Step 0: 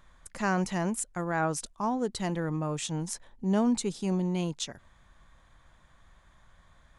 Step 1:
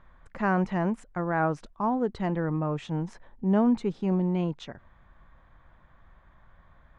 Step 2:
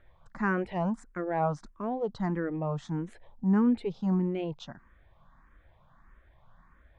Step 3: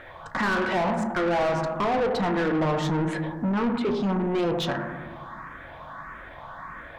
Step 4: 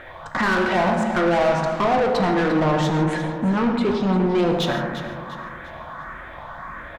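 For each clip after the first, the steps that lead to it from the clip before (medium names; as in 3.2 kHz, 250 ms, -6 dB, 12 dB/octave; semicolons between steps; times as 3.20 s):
low-pass 1.9 kHz 12 dB/octave; trim +3 dB
barber-pole phaser +1.6 Hz
compression 5:1, threshold -34 dBFS, peak gain reduction 12 dB; on a send at -4.5 dB: reverberation RT60 1.3 s, pre-delay 5 ms; on the sum: overdrive pedal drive 26 dB, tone 2.8 kHz, clips at -23 dBFS; trim +6 dB
feedback delay 348 ms, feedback 41%, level -12 dB; gated-style reverb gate 180 ms flat, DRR 8 dB; trim +4 dB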